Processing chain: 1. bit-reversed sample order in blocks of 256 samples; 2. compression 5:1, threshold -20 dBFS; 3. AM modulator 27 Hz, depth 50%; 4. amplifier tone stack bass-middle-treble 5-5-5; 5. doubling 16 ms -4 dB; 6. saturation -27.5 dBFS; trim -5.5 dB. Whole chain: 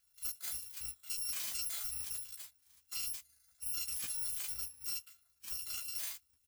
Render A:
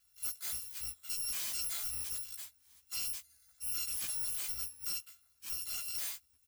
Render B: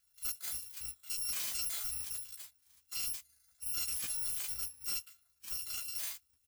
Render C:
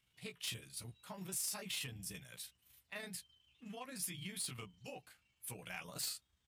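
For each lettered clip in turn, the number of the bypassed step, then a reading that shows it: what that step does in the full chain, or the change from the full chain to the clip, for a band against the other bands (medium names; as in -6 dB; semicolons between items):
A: 3, crest factor change -2.0 dB; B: 2, mean gain reduction 2.0 dB; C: 1, 125 Hz band +11.5 dB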